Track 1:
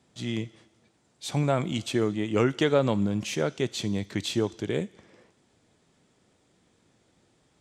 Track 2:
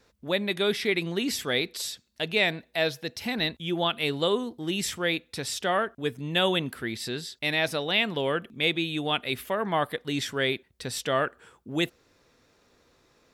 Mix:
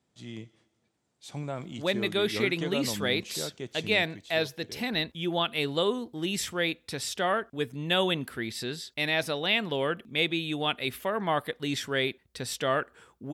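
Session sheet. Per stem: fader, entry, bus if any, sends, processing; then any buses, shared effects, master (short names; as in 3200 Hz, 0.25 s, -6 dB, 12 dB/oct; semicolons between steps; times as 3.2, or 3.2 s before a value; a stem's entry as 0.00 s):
3.97 s -10.5 dB -> 4.2 s -18.5 dB, 0.00 s, no send, dry
-1.5 dB, 1.55 s, no send, dry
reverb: off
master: dry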